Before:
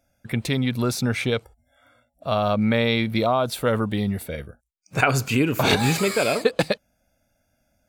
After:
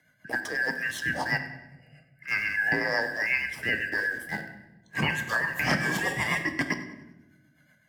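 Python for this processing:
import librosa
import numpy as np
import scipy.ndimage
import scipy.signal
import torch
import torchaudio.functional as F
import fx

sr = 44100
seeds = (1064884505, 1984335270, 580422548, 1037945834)

p1 = fx.band_shuffle(x, sr, order='2143')
p2 = scipy.signal.sosfilt(scipy.signal.butter(2, 140.0, 'highpass', fs=sr, output='sos'), p1)
p3 = fx.tilt_shelf(p2, sr, db=7.5, hz=830.0)
p4 = fx.transient(p3, sr, attack_db=-7, sustain_db=-2)
p5 = fx.rotary(p4, sr, hz=8.0)
p6 = np.where(np.abs(p5) >= 10.0 ** (-36.5 / 20.0), p5, 0.0)
p7 = p5 + (p6 * librosa.db_to_amplitude(-9.5))
p8 = p7 * (1.0 - 0.42 / 2.0 + 0.42 / 2.0 * np.cos(2.0 * np.pi * 3.0 * (np.arange(len(p7)) / sr)))
p9 = p8 + fx.echo_thinned(p8, sr, ms=97, feedback_pct=38, hz=420.0, wet_db=-19.0, dry=0)
p10 = fx.room_shoebox(p9, sr, seeds[0], volume_m3=240.0, walls='mixed', distance_m=0.47)
y = fx.band_squash(p10, sr, depth_pct=40)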